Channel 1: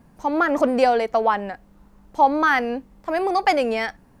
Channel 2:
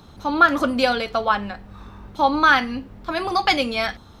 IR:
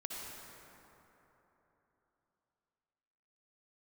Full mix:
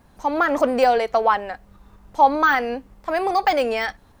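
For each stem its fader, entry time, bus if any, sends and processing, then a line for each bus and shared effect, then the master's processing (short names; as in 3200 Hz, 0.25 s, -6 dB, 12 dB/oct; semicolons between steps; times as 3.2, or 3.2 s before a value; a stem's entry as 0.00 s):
+2.5 dB, 0.00 s, no send, de-esser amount 75%; bell 190 Hz -9.5 dB 1.6 oct
-10.0 dB, 0.00 s, no send, tremolo saw up 5.1 Hz, depth 85%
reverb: off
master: dry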